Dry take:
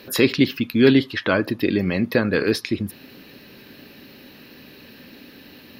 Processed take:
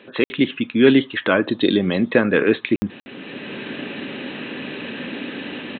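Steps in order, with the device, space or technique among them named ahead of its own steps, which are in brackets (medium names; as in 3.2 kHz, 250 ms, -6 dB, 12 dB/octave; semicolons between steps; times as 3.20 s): call with lost packets (high-pass 170 Hz 12 dB/octave; resampled via 8 kHz; level rider gain up to 16.5 dB; lost packets of 60 ms random); 1.48–2.10 s: resonant high shelf 3.1 kHz +7.5 dB, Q 3; trim -1 dB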